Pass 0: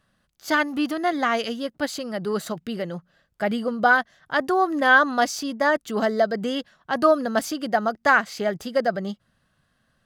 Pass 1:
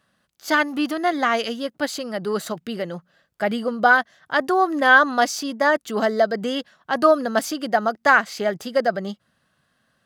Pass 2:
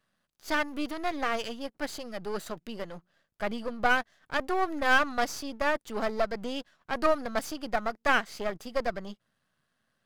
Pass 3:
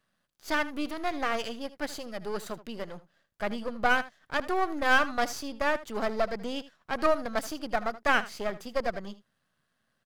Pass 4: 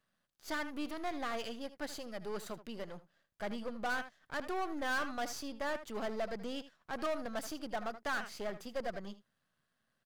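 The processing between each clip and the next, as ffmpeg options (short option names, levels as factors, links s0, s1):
-af "highpass=f=190:p=1,volume=1.33"
-af "aeval=exprs='if(lt(val(0),0),0.251*val(0),val(0))':c=same,volume=0.473"
-af "aecho=1:1:78:0.15"
-af "asoftclip=type=tanh:threshold=0.0631,volume=0.562"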